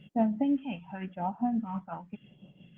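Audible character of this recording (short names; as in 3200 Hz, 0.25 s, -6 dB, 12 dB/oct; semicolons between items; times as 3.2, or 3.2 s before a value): tremolo triangle 5.8 Hz, depth 60%; phasing stages 2, 0.91 Hz, lowest notch 390–1700 Hz; Opus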